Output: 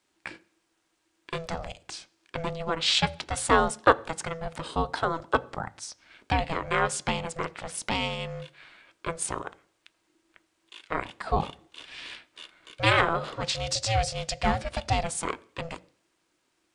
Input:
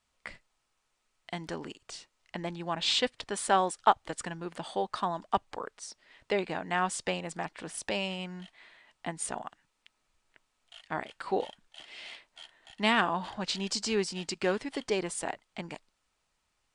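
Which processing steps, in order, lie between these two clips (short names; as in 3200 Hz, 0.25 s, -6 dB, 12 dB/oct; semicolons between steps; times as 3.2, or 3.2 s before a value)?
notches 50/100/150/200/250 Hz; ring modulator 330 Hz; on a send: reverb RT60 0.60 s, pre-delay 3 ms, DRR 16 dB; on the sum: gain +7 dB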